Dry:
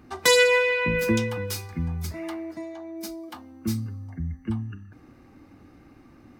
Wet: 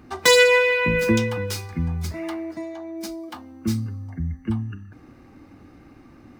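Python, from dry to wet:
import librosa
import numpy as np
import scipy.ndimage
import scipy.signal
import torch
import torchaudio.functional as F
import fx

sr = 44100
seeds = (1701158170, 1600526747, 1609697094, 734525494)

y = scipy.ndimage.median_filter(x, 3, mode='constant')
y = y * 10.0 ** (3.5 / 20.0)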